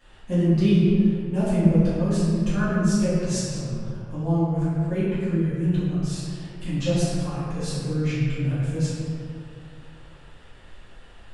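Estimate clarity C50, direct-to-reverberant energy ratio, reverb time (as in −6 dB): −3.0 dB, −13.0 dB, 2.3 s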